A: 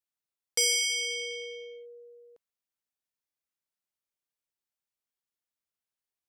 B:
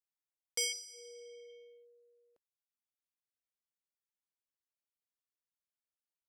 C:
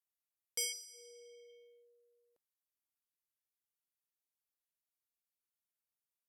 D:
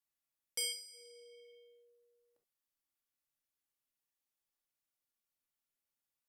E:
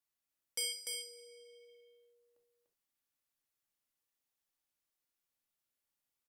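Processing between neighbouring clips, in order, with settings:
reverb reduction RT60 0.84 s; healed spectral selection 0:00.75–0:01.49, 1,100–4,200 Hz after; level −8 dB
parametric band 13,000 Hz +10.5 dB 0.9 octaves; level −5.5 dB
convolution reverb, pre-delay 3 ms, DRR 1.5 dB; level −1 dB
single-tap delay 295 ms −4 dB

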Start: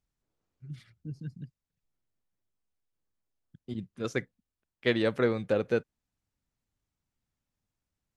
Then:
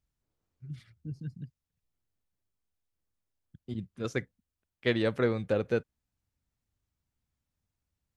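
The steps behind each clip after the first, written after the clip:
parametric band 72 Hz +7.5 dB 1.3 octaves
level −1.5 dB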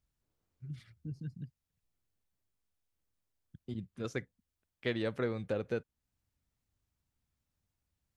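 downward compressor 1.5 to 1, threshold −42 dBFS, peak gain reduction 7.5 dB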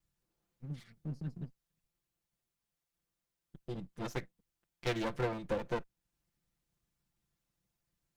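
lower of the sound and its delayed copy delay 5.8 ms
level +2 dB

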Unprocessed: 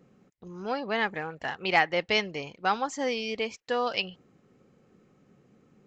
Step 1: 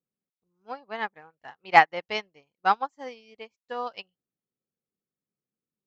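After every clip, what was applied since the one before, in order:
dynamic equaliser 950 Hz, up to +7 dB, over −42 dBFS, Q 1.1
expander for the loud parts 2.5 to 1, over −40 dBFS
level +4.5 dB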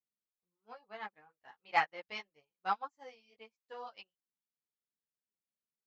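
low-shelf EQ 460 Hz −4.5 dB
string-ensemble chorus
level −8.5 dB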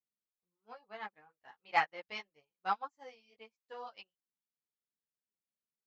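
no processing that can be heard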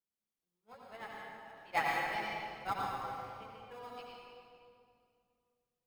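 in parallel at −11 dB: decimation without filtering 30×
on the sum: convolution reverb RT60 2.4 s, pre-delay 74 ms, DRR −3.5 dB
level −4.5 dB

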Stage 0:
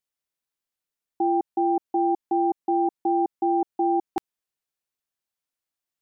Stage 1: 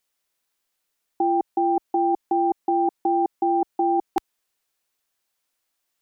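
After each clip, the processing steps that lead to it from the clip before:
parametric band 110 Hz −7.5 dB 2.3 octaves
in parallel at 0 dB: compressor whose output falls as the input rises −29 dBFS, ratio −0.5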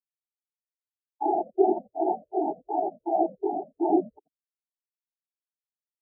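cochlear-implant simulation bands 12
echo with shifted repeats 86 ms, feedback 32%, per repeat −140 Hz, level −5.5 dB
every bin expanded away from the loudest bin 4 to 1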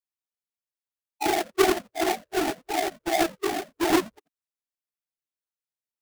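each half-wave held at its own peak
level −2.5 dB

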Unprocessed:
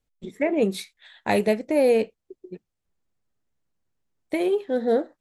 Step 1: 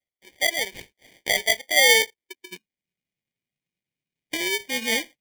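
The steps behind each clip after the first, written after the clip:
high-pass filter sweep 670 Hz → 150 Hz, 0:01.67–0:02.94
decimation without filtering 33×
high shelf with overshoot 1,700 Hz +10 dB, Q 3
level −9.5 dB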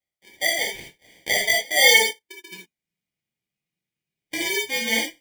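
reverb whose tail is shaped and stops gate 100 ms flat, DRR −2 dB
level −3 dB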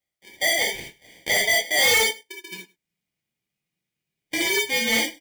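gain into a clipping stage and back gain 19 dB
single-tap delay 102 ms −23 dB
level +3 dB

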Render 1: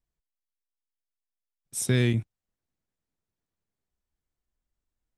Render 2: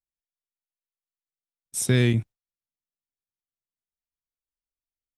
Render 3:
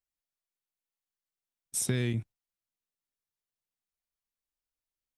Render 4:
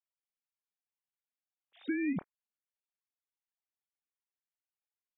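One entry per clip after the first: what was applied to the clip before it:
noise gate with hold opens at −34 dBFS; level +3 dB
downward compressor 3 to 1, threshold −29 dBFS, peak gain reduction 10.5 dB
three sine waves on the formant tracks; level −4 dB

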